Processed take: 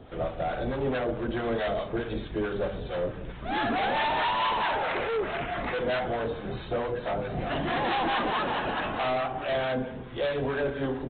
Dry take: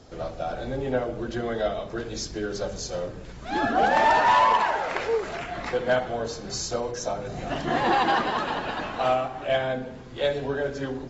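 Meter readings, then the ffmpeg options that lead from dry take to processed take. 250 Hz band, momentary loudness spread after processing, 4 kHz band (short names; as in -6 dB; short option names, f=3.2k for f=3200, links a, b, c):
-1.0 dB, 7 LU, -1.5 dB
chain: -filter_complex "[0:a]aresample=8000,asoftclip=type=hard:threshold=-27.5dB,aresample=44100,acrossover=split=800[a][b];[a]aeval=exprs='val(0)*(1-0.5/2+0.5/2*cos(2*PI*4.6*n/s))':c=same[c];[b]aeval=exprs='val(0)*(1-0.5/2-0.5/2*cos(2*PI*4.6*n/s))':c=same[d];[c][d]amix=inputs=2:normalize=0,volume=4.5dB"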